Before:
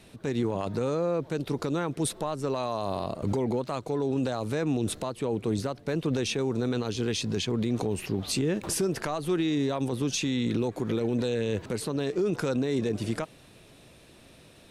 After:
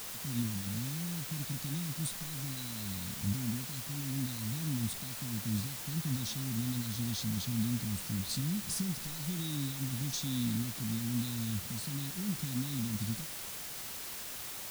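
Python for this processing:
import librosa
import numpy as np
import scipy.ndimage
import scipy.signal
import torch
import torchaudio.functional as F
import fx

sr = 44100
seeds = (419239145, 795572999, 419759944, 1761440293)

y = fx.hpss(x, sr, part='harmonic', gain_db=5)
y = scipy.signal.sosfilt(scipy.signal.ellip(3, 1.0, 40, [220.0, 3800.0], 'bandstop', fs=sr, output='sos'), y)
y = fx.quant_dither(y, sr, seeds[0], bits=6, dither='triangular')
y = y * 10.0 ** (-6.5 / 20.0)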